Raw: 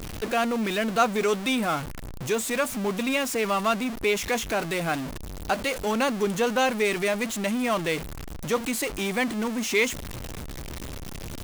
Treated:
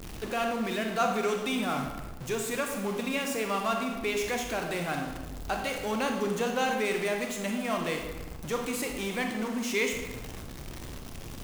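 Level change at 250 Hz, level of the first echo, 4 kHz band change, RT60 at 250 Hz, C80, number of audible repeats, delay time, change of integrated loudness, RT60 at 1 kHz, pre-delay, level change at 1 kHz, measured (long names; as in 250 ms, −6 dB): −4.5 dB, no echo audible, −5.0 dB, 1.4 s, 6.5 dB, no echo audible, no echo audible, −5.0 dB, 1.1 s, 26 ms, −4.0 dB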